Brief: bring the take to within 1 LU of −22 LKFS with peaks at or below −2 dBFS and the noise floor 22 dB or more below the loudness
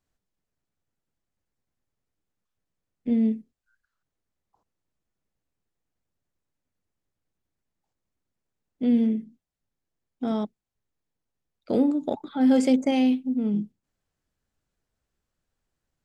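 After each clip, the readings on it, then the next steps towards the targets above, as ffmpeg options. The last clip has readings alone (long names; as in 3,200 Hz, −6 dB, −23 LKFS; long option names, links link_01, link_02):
integrated loudness −24.5 LKFS; sample peak −10.5 dBFS; target loudness −22.0 LKFS
→ -af "volume=2.5dB"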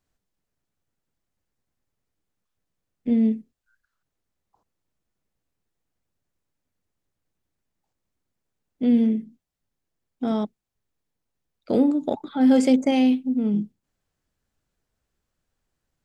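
integrated loudness −22.0 LKFS; sample peak −8.0 dBFS; background noise floor −82 dBFS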